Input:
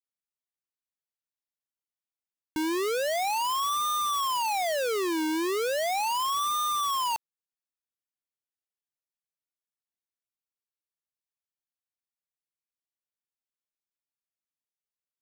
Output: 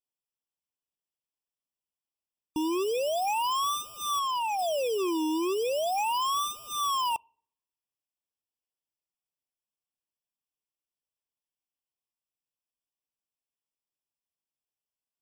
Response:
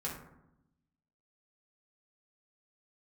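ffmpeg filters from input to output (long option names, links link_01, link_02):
-filter_complex "[0:a]asettb=1/sr,asplit=3[link_01][link_02][link_03];[link_01]atrim=end=4.194[link_04];[link_02]atrim=start=4.19:end=4.59,asetpts=PTS-STARTPTS,afade=type=in:duration=0.004:curve=qsin,afade=type=out:start_time=0.396:duration=0.004:curve=qsin,asplit=2[link_05][link_06];[link_06]highpass=frequency=720:poles=1,volume=4dB,asoftclip=type=tanh:threshold=-27.5dB[link_07];[link_05][link_07]amix=inputs=2:normalize=0,lowpass=frequency=6300:poles=1,volume=-6dB[link_08];[link_03]atrim=start=4.586[link_09];[link_04][link_08]acrossfade=duration=0.004:curve1=hsin:curve2=qsin[link_10];[link_10][link_09]acrossfade=duration=0.004:curve1=qsin:curve2=hsin,asplit=2[link_11][link_12];[1:a]atrim=start_sample=2205,asetrate=74970,aresample=44100[link_13];[link_12][link_13]afir=irnorm=-1:irlink=0,volume=-23.5dB[link_14];[link_11][link_14]amix=inputs=2:normalize=0,afftfilt=real='re*eq(mod(floor(b*sr/1024/1200),2),0)':imag='im*eq(mod(floor(b*sr/1024/1200),2),0)':win_size=1024:overlap=0.75"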